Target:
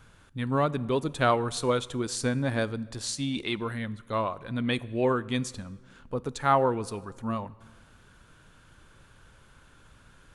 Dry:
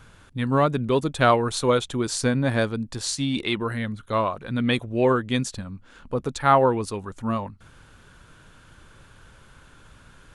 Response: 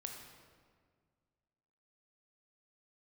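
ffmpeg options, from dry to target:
-filter_complex "[0:a]asplit=2[a][b];[b]highshelf=f=9.2k:g=10.5[c];[1:a]atrim=start_sample=2205,asetrate=48510,aresample=44100[d];[c][d]afir=irnorm=-1:irlink=0,volume=-11dB[e];[a][e]amix=inputs=2:normalize=0,volume=-6.5dB"

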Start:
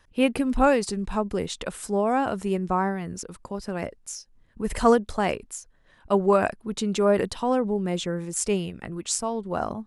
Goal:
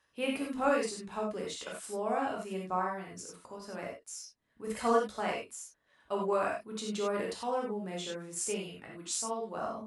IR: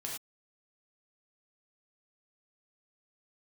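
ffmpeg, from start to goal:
-filter_complex "[0:a]highpass=f=370:p=1[a];[1:a]atrim=start_sample=2205,atrim=end_sample=3087,asetrate=29106,aresample=44100[b];[a][b]afir=irnorm=-1:irlink=0,volume=-8.5dB"

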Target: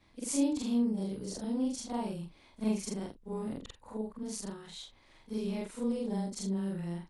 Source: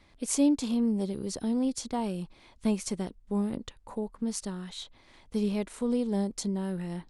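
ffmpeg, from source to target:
-af "afftfilt=real='re':imag='-im':win_size=4096:overlap=0.75"

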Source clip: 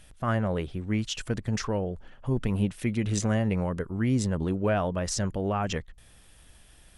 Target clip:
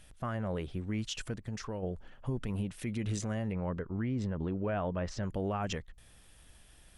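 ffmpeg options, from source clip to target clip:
-filter_complex "[0:a]asplit=3[a][b][c];[a]afade=t=out:st=1.35:d=0.02[d];[b]acompressor=threshold=-37dB:ratio=2,afade=t=in:st=1.35:d=0.02,afade=t=out:st=1.82:d=0.02[e];[c]afade=t=in:st=1.82:d=0.02[f];[d][e][f]amix=inputs=3:normalize=0,asettb=1/sr,asplit=3[g][h][i];[g]atrim=end=3.524[j];[h]atrim=start=3.52:end=5.23,asetpts=PTS-STARTPTS,afade=t=in:d=0.004:c=qsin,afade=t=out:st=1.706:d=0.004:c=qsin,lowpass=2.9k[k];[i]atrim=start=5.226[l];[j][k]acrossfade=d=0.004:c1=hsin:c2=qsin[m];[m][l]acrossfade=d=0.004:c1=qsin:c2=hsin,alimiter=limit=-22dB:level=0:latency=1:release=90,volume=-3.5dB"

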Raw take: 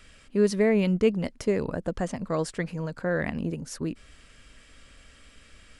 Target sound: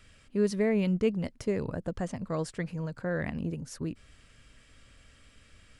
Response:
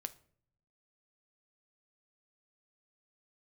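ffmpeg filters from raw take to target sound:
-af "equalizer=f=110:w=1.4:g=8,volume=-5.5dB"

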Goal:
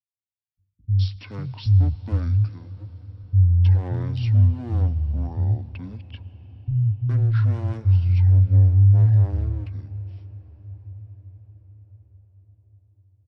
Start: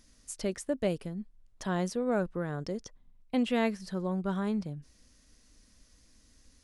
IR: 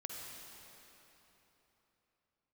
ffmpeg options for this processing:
-filter_complex "[0:a]highpass=f=110:w=0.5412,highpass=f=110:w=1.3066,agate=range=-45dB:threshold=-53dB:ratio=16:detection=peak,equalizer=f=200:t=o:w=0.38:g=13,acrossover=split=180[a][b];[a]dynaudnorm=f=190:g=5:m=15dB[c];[b]asoftclip=type=hard:threshold=-26.5dB[d];[c][d]amix=inputs=2:normalize=0,acrossover=split=340[e][f];[f]adelay=210[g];[e][g]amix=inputs=2:normalize=0,asplit=2[h][i];[1:a]atrim=start_sample=2205[j];[i][j]afir=irnorm=-1:irlink=0,volume=-10dB[k];[h][k]amix=inputs=2:normalize=0,asetrate=22050,aresample=44100,volume=-1.5dB"

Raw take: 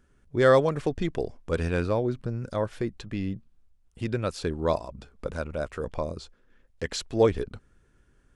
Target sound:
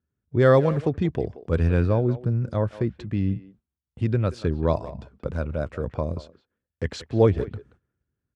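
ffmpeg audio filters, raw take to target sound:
-filter_complex "[0:a]highpass=f=79:w=0.5412,highpass=f=79:w=1.3066,aemphasis=mode=reproduction:type=bsi,agate=range=-21dB:threshold=-54dB:ratio=16:detection=peak,asplit=2[a][b];[b]adelay=180,highpass=300,lowpass=3.4k,asoftclip=type=hard:threshold=-14.5dB,volume=-15dB[c];[a][c]amix=inputs=2:normalize=0"

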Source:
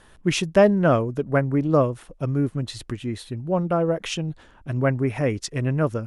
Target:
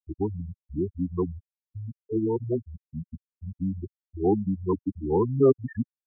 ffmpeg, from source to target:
-filter_complex "[0:a]areverse,afftfilt=real='re*gte(hypot(re,im),0.316)':imag='im*gte(hypot(re,im),0.316)':win_size=1024:overlap=0.75,acrossover=split=230[a][b];[a]acompressor=threshold=-36dB:ratio=5[c];[c][b]amix=inputs=2:normalize=0,asetrate=29433,aresample=44100,atempo=1.49831,volume=-2.5dB"

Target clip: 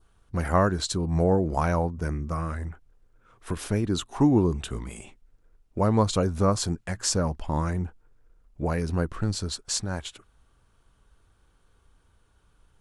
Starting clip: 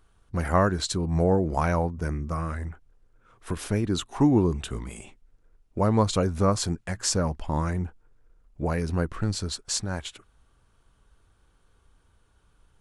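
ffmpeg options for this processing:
-af "adynamicequalizer=threshold=0.00398:dfrequency=2100:dqfactor=2:tfrequency=2100:tqfactor=2:attack=5:release=100:ratio=0.375:range=2.5:mode=cutabove:tftype=bell"

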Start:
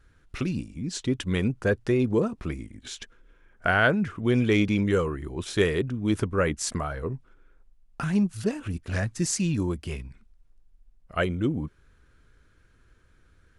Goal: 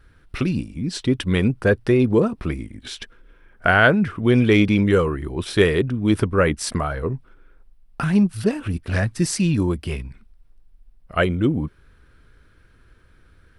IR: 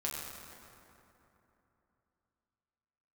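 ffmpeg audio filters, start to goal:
-af "equalizer=f=6.8k:t=o:w=0.33:g=-11,volume=6.5dB"

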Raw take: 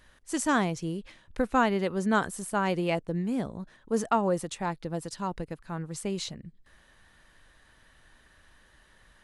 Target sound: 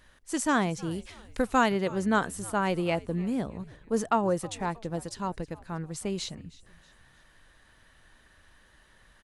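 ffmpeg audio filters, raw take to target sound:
-filter_complex "[0:a]asettb=1/sr,asplit=3[a][b][c];[a]atrim=end=0.914[d];[b]atrim=start=0.91:end=1.72,asetpts=PTS-STARTPTS,afade=t=in:d=0.004:c=qsin,afade=t=out:st=0.806:d=0.004:c=qsin,highshelf=f=3.5k:g=9[e];[c]atrim=start=1.716[f];[d][e]acrossfade=d=0.004:c1=hsin:c2=qsin[g];[g][f]acrossfade=d=0.004:c1=qsin:c2=hsin,asplit=2[h][i];[i]asplit=3[j][k][l];[j]adelay=316,afreqshift=-110,volume=-20.5dB[m];[k]adelay=632,afreqshift=-220,volume=-27.6dB[n];[l]adelay=948,afreqshift=-330,volume=-34.8dB[o];[m][n][o]amix=inputs=3:normalize=0[p];[h][p]amix=inputs=2:normalize=0"

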